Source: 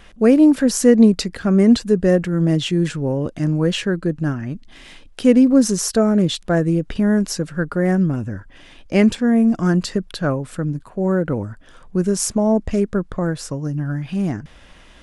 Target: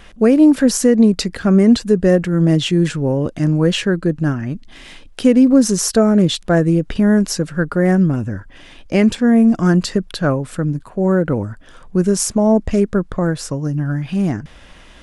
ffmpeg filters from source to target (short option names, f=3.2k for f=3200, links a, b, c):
-af "alimiter=limit=-6.5dB:level=0:latency=1:release=224,volume=3.5dB"